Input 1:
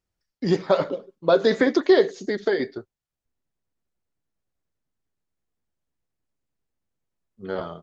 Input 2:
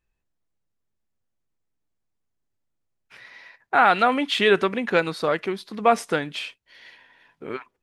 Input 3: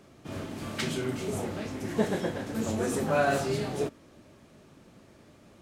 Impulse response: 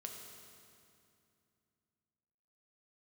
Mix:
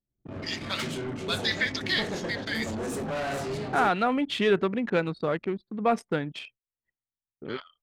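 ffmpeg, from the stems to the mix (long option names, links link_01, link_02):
-filter_complex "[0:a]highpass=frequency=2400:width_type=q:width=1.9,volume=1dB[link_01];[1:a]equalizer=frequency=130:width=0.4:gain=9.5,asoftclip=type=tanh:threshold=-4dB,volume=-7.5dB[link_02];[2:a]asoftclip=type=hard:threshold=-28dB,volume=-0.5dB[link_03];[link_01][link_02][link_03]amix=inputs=3:normalize=0,agate=range=-15dB:threshold=-53dB:ratio=16:detection=peak,anlmdn=0.631"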